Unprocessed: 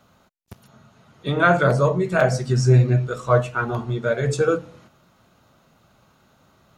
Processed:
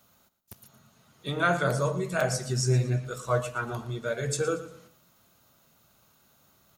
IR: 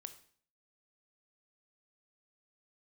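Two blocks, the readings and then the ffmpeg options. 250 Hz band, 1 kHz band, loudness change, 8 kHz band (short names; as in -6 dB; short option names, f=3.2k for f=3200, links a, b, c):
-9.0 dB, -8.0 dB, -8.5 dB, +2.0 dB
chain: -filter_complex "[0:a]aemphasis=mode=production:type=75fm,asplit=2[a][b];[b]aecho=0:1:116|232|348:0.188|0.064|0.0218[c];[a][c]amix=inputs=2:normalize=0,volume=-8.5dB"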